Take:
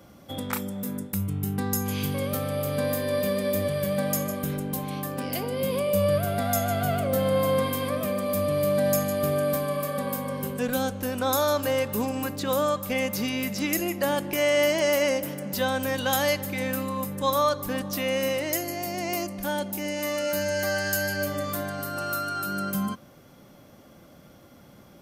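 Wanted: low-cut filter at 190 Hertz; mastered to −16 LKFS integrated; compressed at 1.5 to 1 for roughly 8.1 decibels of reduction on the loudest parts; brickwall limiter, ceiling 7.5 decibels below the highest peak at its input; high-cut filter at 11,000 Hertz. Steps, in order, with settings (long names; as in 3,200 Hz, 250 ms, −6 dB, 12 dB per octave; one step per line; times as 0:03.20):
high-pass filter 190 Hz
low-pass filter 11,000 Hz
downward compressor 1.5 to 1, threshold −43 dBFS
level +20 dB
brickwall limiter −7 dBFS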